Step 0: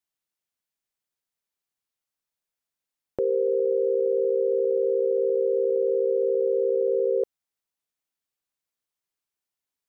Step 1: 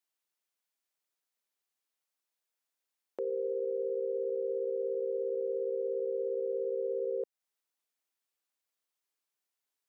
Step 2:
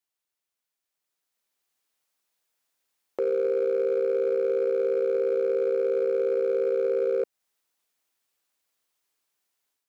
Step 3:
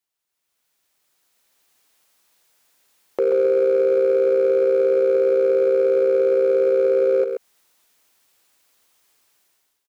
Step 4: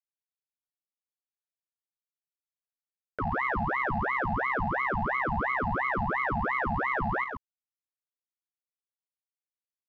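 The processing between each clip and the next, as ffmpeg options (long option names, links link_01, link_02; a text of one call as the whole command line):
ffmpeg -i in.wav -af "highpass=300,alimiter=level_in=2.5dB:limit=-24dB:level=0:latency=1:release=227,volume=-2.5dB" out.wav
ffmpeg -i in.wav -af "dynaudnorm=framelen=880:gausssize=3:maxgain=9dB,asoftclip=type=hard:threshold=-19.5dB" out.wav
ffmpeg -i in.wav -filter_complex "[0:a]alimiter=level_in=3.5dB:limit=-24dB:level=0:latency=1:release=118,volume=-3.5dB,dynaudnorm=framelen=140:gausssize=7:maxgain=11.5dB,asplit=2[link_01][link_02];[link_02]aecho=0:1:132:0.447[link_03];[link_01][link_03]amix=inputs=2:normalize=0,volume=3dB" out.wav
ffmpeg -i in.wav -af "aresample=11025,aeval=exprs='sgn(val(0))*max(abs(val(0))-0.00178,0)':channel_layout=same,aresample=44100,aeval=exprs='val(0)*sin(2*PI*980*n/s+980*0.7/2.9*sin(2*PI*2.9*n/s))':channel_layout=same,volume=-8.5dB" out.wav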